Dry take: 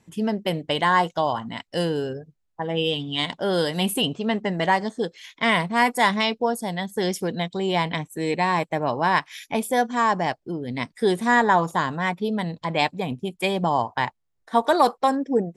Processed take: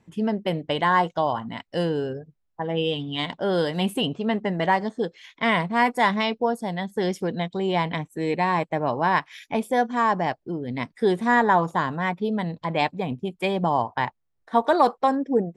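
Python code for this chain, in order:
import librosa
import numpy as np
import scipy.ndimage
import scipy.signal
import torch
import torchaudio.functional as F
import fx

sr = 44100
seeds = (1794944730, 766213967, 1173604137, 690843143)

y = fx.lowpass(x, sr, hz=2500.0, slope=6)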